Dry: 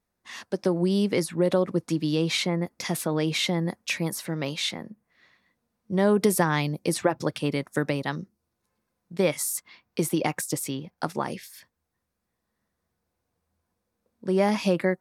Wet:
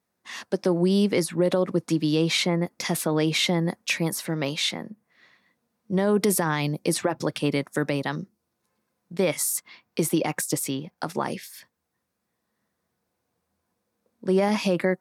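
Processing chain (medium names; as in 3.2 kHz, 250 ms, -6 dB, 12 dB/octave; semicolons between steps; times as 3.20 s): high-pass 120 Hz; peak limiter -15.5 dBFS, peak gain reduction 8 dB; trim +3 dB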